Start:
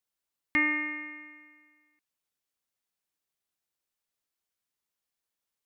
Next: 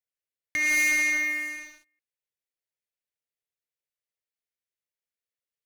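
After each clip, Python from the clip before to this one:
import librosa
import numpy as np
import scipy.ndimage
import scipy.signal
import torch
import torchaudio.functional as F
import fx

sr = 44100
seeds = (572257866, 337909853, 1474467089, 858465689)

y = fx.graphic_eq_10(x, sr, hz=(125, 250, 500, 1000, 2000), db=(7, -11, 11, -11, 8))
y = fx.over_compress(y, sr, threshold_db=-26.0, ratio=-0.5)
y = fx.leveller(y, sr, passes=5)
y = y * 10.0 ** (-4.0 / 20.0)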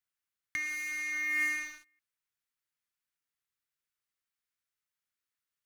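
y = fx.peak_eq(x, sr, hz=1300.0, db=7.5, octaves=0.88)
y = fx.over_compress(y, sr, threshold_db=-29.0, ratio=-1.0)
y = fx.peak_eq(y, sr, hz=560.0, db=-10.0, octaves=1.3)
y = y * 10.0 ** (-4.0 / 20.0)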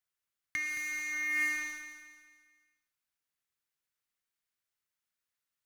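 y = fx.echo_feedback(x, sr, ms=220, feedback_pct=41, wet_db=-9.0)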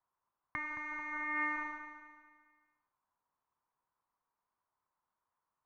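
y = fx.lowpass_res(x, sr, hz=1000.0, q=6.0)
y = y * 10.0 ** (4.0 / 20.0)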